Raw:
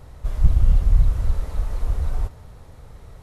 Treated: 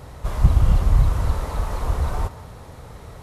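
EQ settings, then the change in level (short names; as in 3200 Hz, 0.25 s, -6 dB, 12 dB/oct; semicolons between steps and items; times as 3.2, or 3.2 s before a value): HPF 100 Hz 6 dB/oct; dynamic EQ 1000 Hz, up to +6 dB, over -58 dBFS, Q 2; +7.5 dB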